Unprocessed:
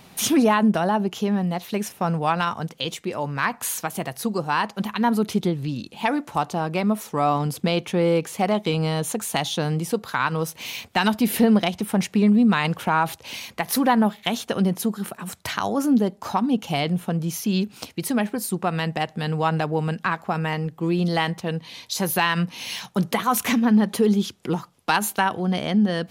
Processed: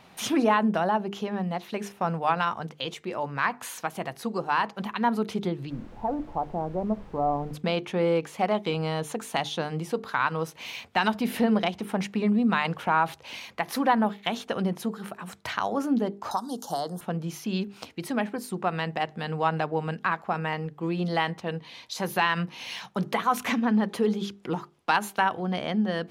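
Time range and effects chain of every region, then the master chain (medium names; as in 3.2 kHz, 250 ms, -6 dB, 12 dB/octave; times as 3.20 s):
5.69–7.53 s: inverse Chebyshev low-pass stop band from 4.8 kHz, stop band 80 dB + added noise brown -37 dBFS
16.31–17.01 s: Butterworth band-stop 2.4 kHz, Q 0.66 + tilt EQ +4 dB/octave + three bands compressed up and down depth 100%
whole clip: low-pass 2.1 kHz 6 dB/octave; bass shelf 410 Hz -7.5 dB; hum notches 50/100/150/200/250/300/350/400/450 Hz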